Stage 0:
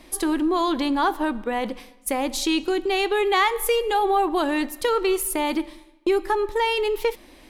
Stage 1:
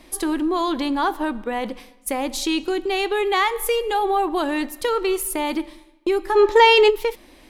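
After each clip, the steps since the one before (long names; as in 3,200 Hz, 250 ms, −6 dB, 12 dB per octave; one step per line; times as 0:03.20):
gain on a spectral selection 0:06.36–0:06.90, 240–7,700 Hz +10 dB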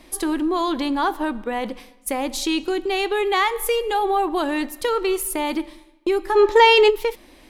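no processing that can be heard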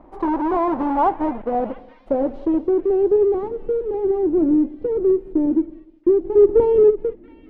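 each half-wave held at its own peak
low-pass filter sweep 880 Hz → 350 Hz, 0:01.00–0:03.58
echo through a band-pass that steps 682 ms, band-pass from 2,500 Hz, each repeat 0.7 octaves, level −8 dB
level −4.5 dB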